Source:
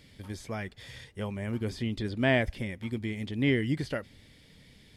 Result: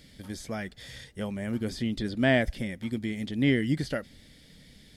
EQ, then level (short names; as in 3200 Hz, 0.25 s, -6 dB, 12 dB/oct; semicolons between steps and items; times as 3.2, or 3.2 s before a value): fifteen-band EQ 100 Hz -9 dB, 400 Hz -5 dB, 1000 Hz -8 dB, 2500 Hz -6 dB; +5.0 dB